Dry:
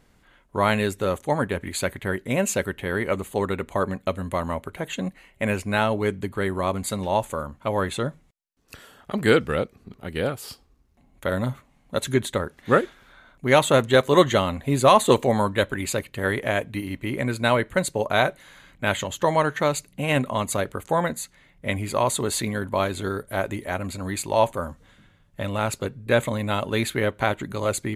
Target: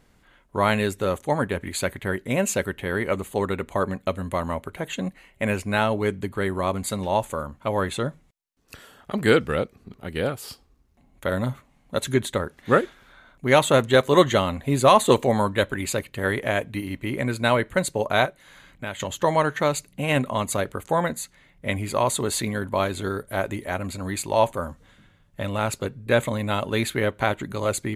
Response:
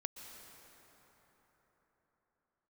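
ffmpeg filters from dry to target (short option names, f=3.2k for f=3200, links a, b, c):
-filter_complex "[0:a]asettb=1/sr,asplit=3[a][b][c];[a]atrim=end=18.254[d];[b]atrim=start=18.25:end=19,asetpts=PTS-STARTPTS,afade=t=in:d=0.004:c=qsin,afade=t=out:st=0.746:d=0.004:c=qsin,acompressor=threshold=-36dB:ratio=2[e];[c]atrim=start=18.996[f];[d][e]acrossfade=d=0.004:c1=hsin:c2=qsin[g];[g][f]acrossfade=d=0.004:c1=qsin:c2=hsin"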